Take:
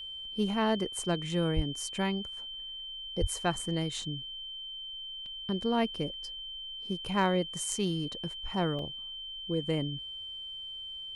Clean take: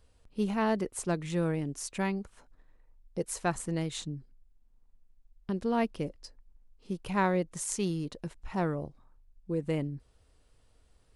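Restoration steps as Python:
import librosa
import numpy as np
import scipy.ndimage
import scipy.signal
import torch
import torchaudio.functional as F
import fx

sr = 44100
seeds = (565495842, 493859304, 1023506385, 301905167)

y = fx.fix_declip(x, sr, threshold_db=-17.0)
y = fx.notch(y, sr, hz=3100.0, q=30.0)
y = fx.fix_deplosive(y, sr, at_s=(1.55, 3.2))
y = fx.fix_interpolate(y, sr, at_s=(5.26, 8.79), length_ms=2.1)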